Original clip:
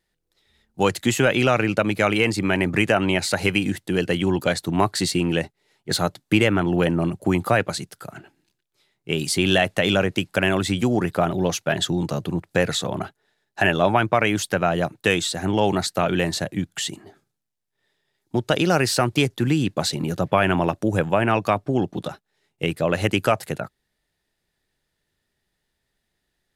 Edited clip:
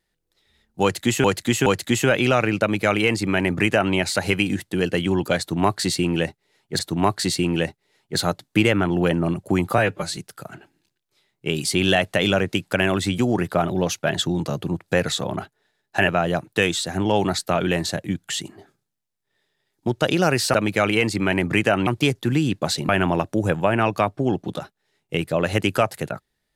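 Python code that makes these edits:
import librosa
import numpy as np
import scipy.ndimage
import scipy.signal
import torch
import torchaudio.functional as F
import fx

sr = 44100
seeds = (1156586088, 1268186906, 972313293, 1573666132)

y = fx.edit(x, sr, fx.repeat(start_s=0.82, length_s=0.42, count=3),
    fx.duplicate(start_s=1.77, length_s=1.33, to_s=19.02),
    fx.repeat(start_s=4.55, length_s=1.4, count=2),
    fx.stretch_span(start_s=7.54, length_s=0.26, factor=1.5),
    fx.cut(start_s=13.71, length_s=0.85),
    fx.cut(start_s=20.04, length_s=0.34), tone=tone)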